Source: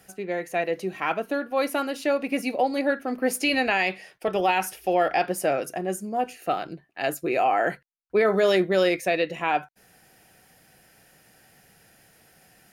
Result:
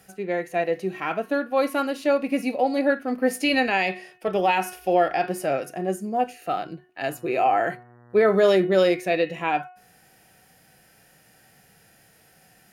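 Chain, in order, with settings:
hum removal 364.7 Hz, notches 8
harmonic and percussive parts rebalanced harmonic +8 dB
0:07.07–0:08.35: hum with harmonics 120 Hz, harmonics 16, −47 dBFS −5 dB per octave
level −5 dB

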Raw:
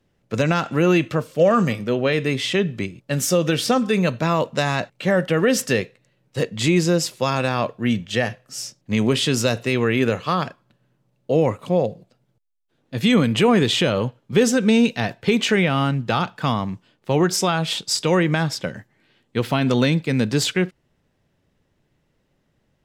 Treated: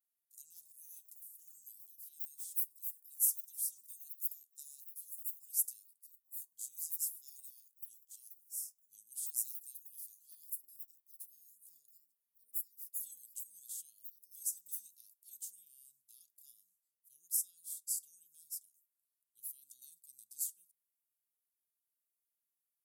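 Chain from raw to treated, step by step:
pitch vibrato 0.87 Hz 49 cents
inverse Chebyshev high-pass filter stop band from 2,200 Hz, stop band 80 dB
delay with pitch and tempo change per echo 298 ms, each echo +6 semitones, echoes 2
level +4 dB

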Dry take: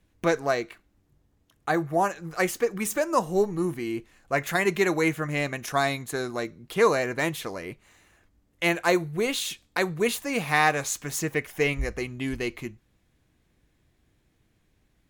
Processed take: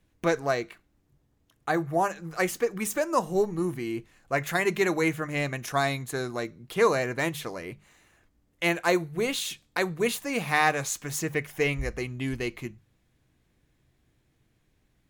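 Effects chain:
parametric band 130 Hz +5 dB 0.33 octaves
mains-hum notches 50/100/150/200 Hz
level −1.5 dB

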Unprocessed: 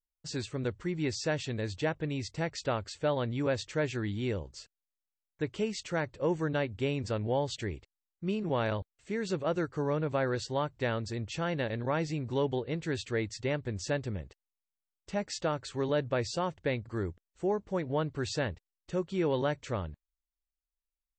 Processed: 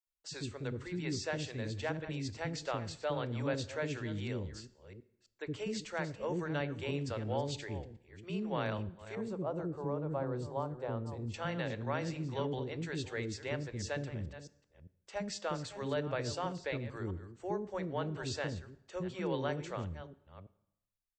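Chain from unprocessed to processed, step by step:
delay that plays each chunk backwards 329 ms, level −13 dB
0:09.15–0:11.34: flat-topped bell 3,300 Hz −15 dB 2.6 octaves
multiband delay without the direct sound highs, lows 70 ms, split 410 Hz
dense smooth reverb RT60 0.81 s, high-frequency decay 0.85×, DRR 15.5 dB
level −4 dB

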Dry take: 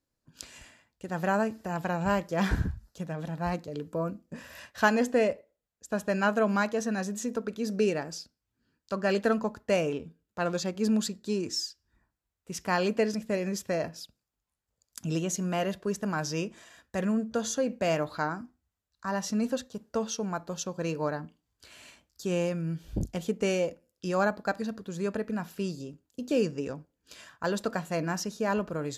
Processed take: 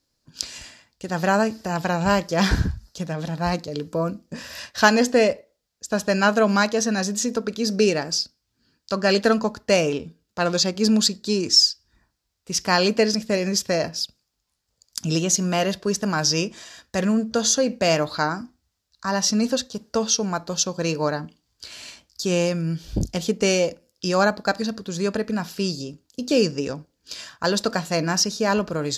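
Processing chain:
parametric band 4,900 Hz +11.5 dB 0.96 octaves
level +7 dB

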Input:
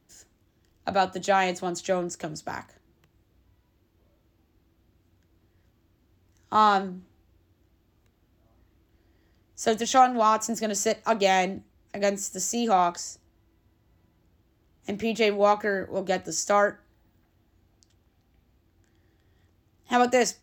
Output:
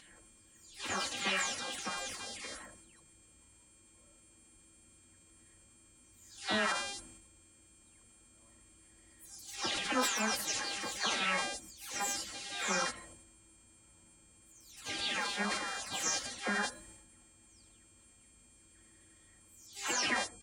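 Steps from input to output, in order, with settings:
every frequency bin delayed by itself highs early, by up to 387 ms
hum with harmonics 400 Hz, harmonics 25, −44 dBFS −1 dB per octave
drawn EQ curve 710 Hz 0 dB, 1,100 Hz +6 dB, 2,600 Hz +5 dB, 12,000 Hz −5 dB
gate on every frequency bin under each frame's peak −15 dB weak
transient designer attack −1 dB, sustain +8 dB
comb filter 3.7 ms, depth 43%
level −1.5 dB

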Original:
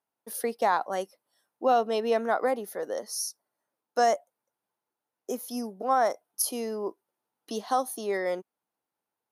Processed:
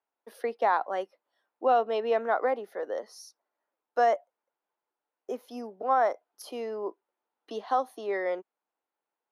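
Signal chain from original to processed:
three-way crossover with the lows and the highs turned down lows −19 dB, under 270 Hz, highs −22 dB, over 3,600 Hz

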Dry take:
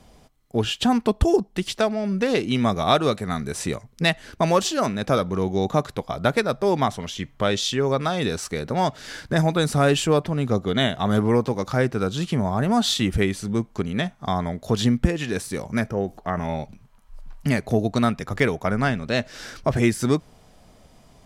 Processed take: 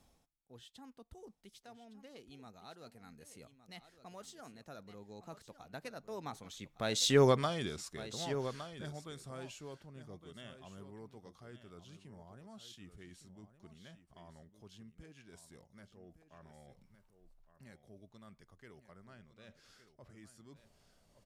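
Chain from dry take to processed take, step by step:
source passing by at 0:07.21, 28 m/s, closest 2.8 metres
high-shelf EQ 4,700 Hz +6.5 dB
reversed playback
upward compression, threshold −45 dBFS
reversed playback
single-tap delay 1,162 ms −12 dB
level −2.5 dB

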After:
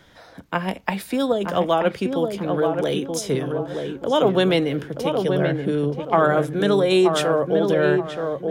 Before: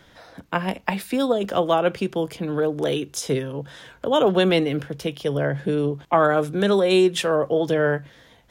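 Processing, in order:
notch filter 2,700 Hz, Q 27
on a send: feedback echo with a low-pass in the loop 928 ms, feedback 36%, low-pass 1,400 Hz, level −4.5 dB

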